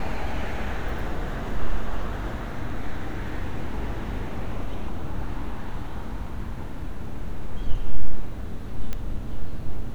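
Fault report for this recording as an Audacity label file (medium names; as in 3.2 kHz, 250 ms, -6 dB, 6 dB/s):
8.930000	8.930000	pop -15 dBFS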